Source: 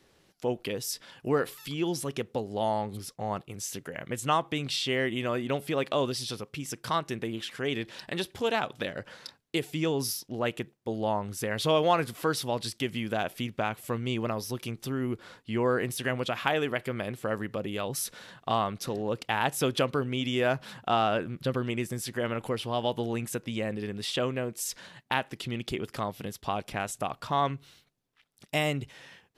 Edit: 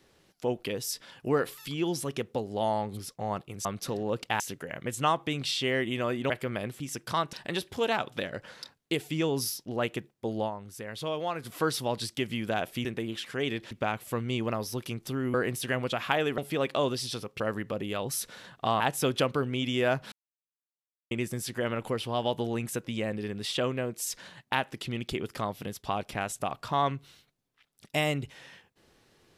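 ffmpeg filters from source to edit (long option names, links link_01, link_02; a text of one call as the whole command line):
ffmpeg -i in.wav -filter_complex "[0:a]asplit=16[link_01][link_02][link_03][link_04][link_05][link_06][link_07][link_08][link_09][link_10][link_11][link_12][link_13][link_14][link_15][link_16];[link_01]atrim=end=3.652[link_17];[link_02]atrim=start=18.638:end=19.392[link_18];[link_03]atrim=start=3.648:end=5.552[link_19];[link_04]atrim=start=16.738:end=17.242[link_20];[link_05]atrim=start=6.568:end=7.102[link_21];[link_06]atrim=start=7.958:end=11.14,asetpts=PTS-STARTPTS,afade=type=out:start_time=3.042:duration=0.14:curve=qsin:silence=0.375837[link_22];[link_07]atrim=start=11.14:end=12.05,asetpts=PTS-STARTPTS,volume=-8.5dB[link_23];[link_08]atrim=start=12.05:end=13.482,asetpts=PTS-STARTPTS,afade=type=in:duration=0.14:curve=qsin:silence=0.375837[link_24];[link_09]atrim=start=7.098:end=7.962[link_25];[link_10]atrim=start=13.478:end=15.112[link_26];[link_11]atrim=start=15.698:end=16.742[link_27];[link_12]atrim=start=5.548:end=6.572[link_28];[link_13]atrim=start=17.238:end=18.642[link_29];[link_14]atrim=start=19.388:end=20.71,asetpts=PTS-STARTPTS,afade=type=out:start_time=1.318:duration=0.004:curve=hsin[link_30];[link_15]atrim=start=20.71:end=21.7,asetpts=PTS-STARTPTS,volume=0[link_31];[link_16]atrim=start=21.7,asetpts=PTS-STARTPTS,afade=type=in:duration=0.004:curve=hsin[link_32];[link_17][link_18]acrossfade=duration=0.004:curve1=hsin:curve2=hsin[link_33];[link_33][link_19]acrossfade=duration=0.004:curve1=hsin:curve2=hsin[link_34];[link_34][link_20]acrossfade=duration=0.004:curve1=hsin:curve2=hsin[link_35];[link_35][link_21]acrossfade=duration=0.004:curve1=hsin:curve2=hsin[link_36];[link_22][link_23][link_24]concat=n=3:v=0:a=1[link_37];[link_36][link_37]acrossfade=duration=0.004:curve1=hsin:curve2=hsin[link_38];[link_38][link_25]acrossfade=duration=0.004:curve1=hsin:curve2=hsin[link_39];[link_39][link_26]acrossfade=duration=0.004:curve1=hsin:curve2=hsin[link_40];[link_40][link_27]acrossfade=duration=0.004:curve1=hsin:curve2=hsin[link_41];[link_41][link_28]acrossfade=duration=0.004:curve1=hsin:curve2=hsin[link_42];[link_42][link_29]acrossfade=duration=0.004:curve1=hsin:curve2=hsin[link_43];[link_30][link_31][link_32]concat=n=3:v=0:a=1[link_44];[link_43][link_44]acrossfade=duration=0.004:curve1=hsin:curve2=hsin" out.wav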